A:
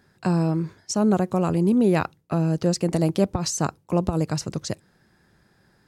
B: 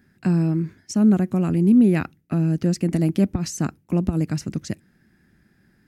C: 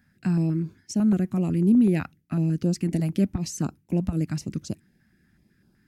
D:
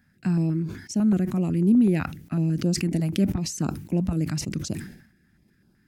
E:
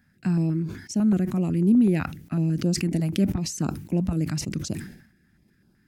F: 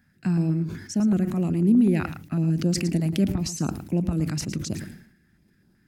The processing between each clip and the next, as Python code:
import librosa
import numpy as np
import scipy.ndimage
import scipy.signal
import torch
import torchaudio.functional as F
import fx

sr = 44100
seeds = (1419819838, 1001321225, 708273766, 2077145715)

y1 = fx.graphic_eq(x, sr, hz=(125, 250, 500, 1000, 2000, 4000, 8000), db=(-3, 6, -9, -11, 3, -8, -6))
y1 = y1 * librosa.db_to_amplitude(2.5)
y2 = fx.filter_held_notch(y1, sr, hz=8.0, low_hz=370.0, high_hz=1900.0)
y2 = y2 * librosa.db_to_amplitude(-3.0)
y3 = fx.sustainer(y2, sr, db_per_s=89.0)
y4 = y3
y5 = y4 + 10.0 ** (-11.5 / 20.0) * np.pad(y4, (int(111 * sr / 1000.0), 0))[:len(y4)]